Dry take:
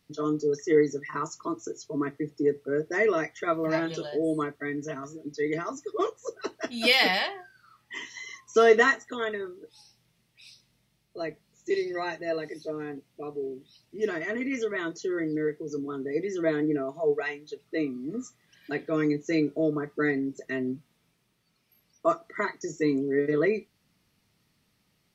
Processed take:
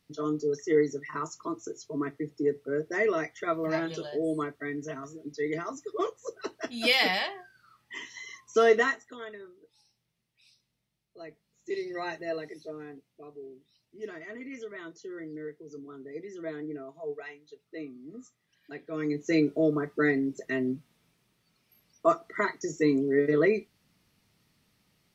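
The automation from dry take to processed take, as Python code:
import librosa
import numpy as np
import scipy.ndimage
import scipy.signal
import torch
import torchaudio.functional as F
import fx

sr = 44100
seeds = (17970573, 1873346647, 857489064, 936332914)

y = fx.gain(x, sr, db=fx.line((8.69, -2.5), (9.26, -11.5), (11.25, -11.5), (12.13, -2.0), (13.32, -11.0), (18.83, -11.0), (19.3, 1.0)))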